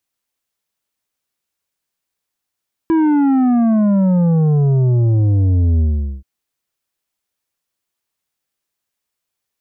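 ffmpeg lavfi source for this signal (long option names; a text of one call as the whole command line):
ffmpeg -f lavfi -i "aevalsrc='0.266*clip((3.33-t)/0.43,0,1)*tanh(2.51*sin(2*PI*330*3.33/log(65/330)*(exp(log(65/330)*t/3.33)-1)))/tanh(2.51)':duration=3.33:sample_rate=44100" out.wav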